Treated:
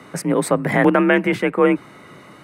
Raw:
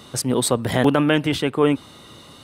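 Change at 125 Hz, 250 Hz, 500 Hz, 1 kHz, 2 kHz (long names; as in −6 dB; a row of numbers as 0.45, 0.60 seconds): −1.0, +2.0, +3.0, +3.5, +6.0 decibels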